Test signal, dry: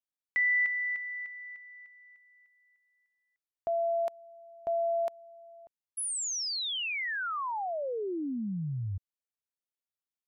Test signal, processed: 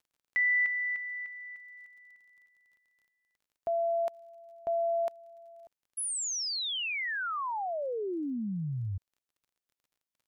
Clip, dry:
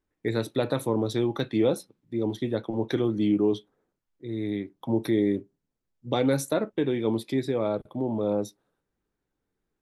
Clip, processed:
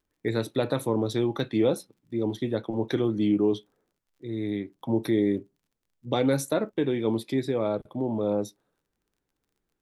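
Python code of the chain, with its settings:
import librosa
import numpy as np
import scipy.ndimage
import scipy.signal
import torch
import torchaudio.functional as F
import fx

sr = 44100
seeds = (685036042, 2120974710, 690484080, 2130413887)

y = fx.dmg_crackle(x, sr, seeds[0], per_s=35.0, level_db=-58.0)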